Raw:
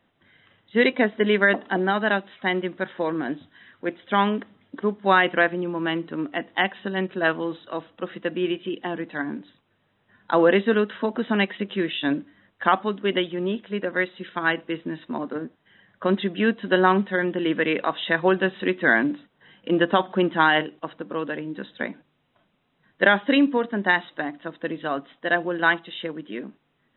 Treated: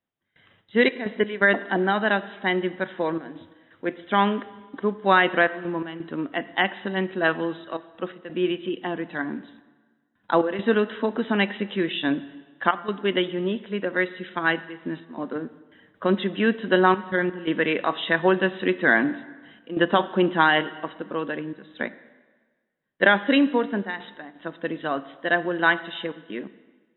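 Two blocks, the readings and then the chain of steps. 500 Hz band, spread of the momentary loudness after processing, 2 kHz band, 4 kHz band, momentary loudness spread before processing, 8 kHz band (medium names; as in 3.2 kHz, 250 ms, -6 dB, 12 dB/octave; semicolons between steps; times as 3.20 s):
-0.5 dB, 14 LU, -0.5 dB, -0.5 dB, 13 LU, no reading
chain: gate with hold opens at -47 dBFS; trance gate "xxxxx.x.xxxxx" 85 bpm -12 dB; plate-style reverb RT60 1.4 s, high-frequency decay 0.9×, DRR 15 dB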